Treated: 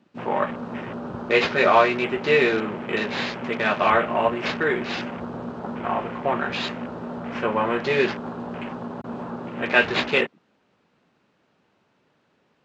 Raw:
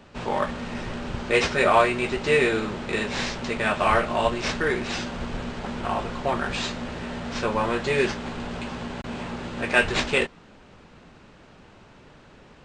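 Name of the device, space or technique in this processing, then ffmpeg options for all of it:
over-cleaned archive recording: -af "highpass=150,lowpass=7.6k,afwtdn=0.0158,volume=2dB"

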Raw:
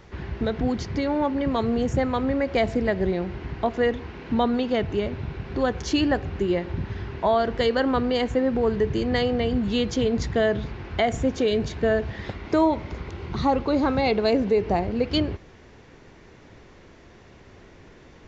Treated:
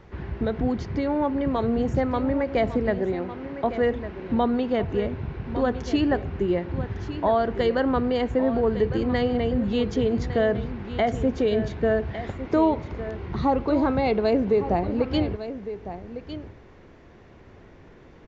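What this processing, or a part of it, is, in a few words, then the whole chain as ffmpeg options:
through cloth: -filter_complex "[0:a]asettb=1/sr,asplit=3[a][b][c];[a]atrim=end=2.994[d];[b]atrim=start=2.99:end=3.64,asetpts=PTS-STARTPTS,afade=t=in:d=0.004:c=qsin,afade=t=out:st=0.646:d=0.004:c=qsin,highpass=240[e];[c]atrim=start=3.636[f];[d][e]acrossfade=d=0.004:c1=hsin:c2=qsin[g];[g][f]acrossfade=d=0.004:c1=qsin:c2=hsin,highshelf=f=3.2k:g=-12,aecho=1:1:1156:0.251"

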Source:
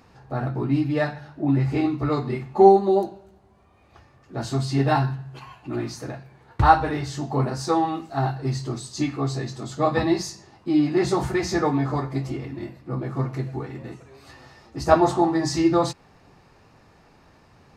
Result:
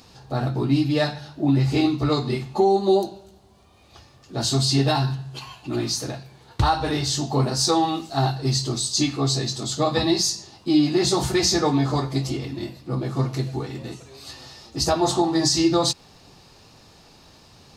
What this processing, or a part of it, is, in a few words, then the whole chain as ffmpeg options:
over-bright horn tweeter: -af "highshelf=f=2.7k:t=q:w=1.5:g=9.5,alimiter=limit=-12dB:level=0:latency=1:release=195,volume=2.5dB"

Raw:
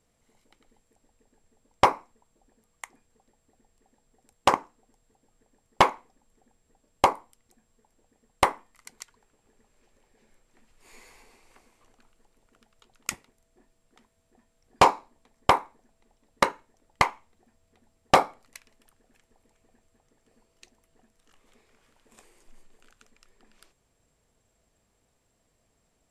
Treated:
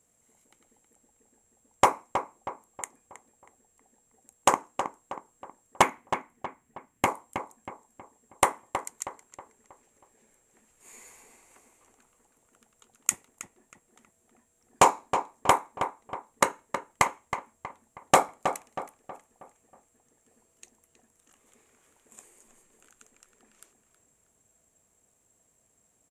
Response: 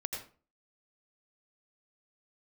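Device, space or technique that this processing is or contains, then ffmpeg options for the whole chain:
budget condenser microphone: -filter_complex "[0:a]highpass=f=110:p=1,highshelf=f=5.9k:t=q:w=3:g=6,asettb=1/sr,asplit=3[a][b][c];[a]atrim=end=5.824[d];[b]atrim=start=5.82:end=7.08,asetpts=PTS-STARTPTS,afade=t=in:d=0.004:c=qsin,afade=t=out:st=1.256:d=0.004:c=qsin,equalizer=f=125:t=o:w=1:g=5,equalizer=f=250:t=o:w=1:g=5,equalizer=f=500:t=o:w=1:g=-6,equalizer=f=1k:t=o:w=1:g=-6,equalizer=f=2k:t=o:w=1:g=6,equalizer=f=4k:t=o:w=1:g=-4,equalizer=f=8k:t=o:w=1:g=-6[e];[c]atrim=start=7.076[f];[d][e]acrossfade=d=0.004:c1=hsin:c2=qsin[g];[g][f]acrossfade=d=0.004:c1=qsin:c2=hsin,asplit=2[h][i];[i]adelay=319,lowpass=f=2.5k:p=1,volume=-8dB,asplit=2[j][k];[k]adelay=319,lowpass=f=2.5k:p=1,volume=0.44,asplit=2[l][m];[m]adelay=319,lowpass=f=2.5k:p=1,volume=0.44,asplit=2[n][o];[o]adelay=319,lowpass=f=2.5k:p=1,volume=0.44,asplit=2[p][q];[q]adelay=319,lowpass=f=2.5k:p=1,volume=0.44[r];[h][j][l][n][p][r]amix=inputs=6:normalize=0,volume=-1dB"

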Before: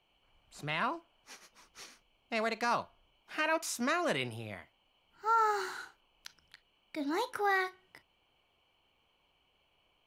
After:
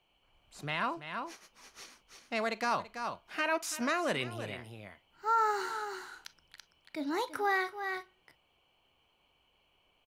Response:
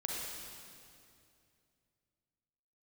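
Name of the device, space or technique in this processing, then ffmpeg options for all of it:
ducked delay: -filter_complex "[0:a]asplit=3[a][b][c];[b]adelay=333,volume=-5dB[d];[c]apad=whole_len=458340[e];[d][e]sidechaincompress=threshold=-43dB:ratio=8:attack=16:release=256[f];[a][f]amix=inputs=2:normalize=0"

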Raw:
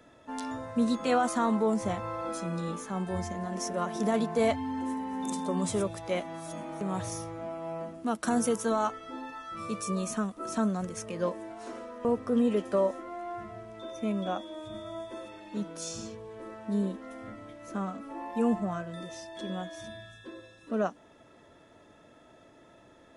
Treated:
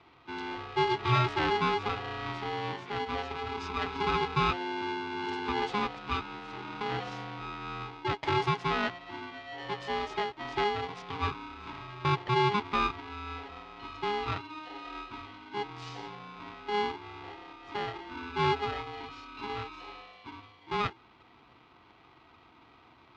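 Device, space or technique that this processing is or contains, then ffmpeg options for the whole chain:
ring modulator pedal into a guitar cabinet: -af "aeval=exprs='val(0)*sgn(sin(2*PI*620*n/s))':c=same,highpass=77,equalizer=f=130:t=q:w=4:g=5,equalizer=f=180:t=q:w=4:g=-5,equalizer=f=530:t=q:w=4:g=-5,equalizer=f=1.7k:t=q:w=4:g=-5,lowpass=f=3.9k:w=0.5412,lowpass=f=3.9k:w=1.3066"

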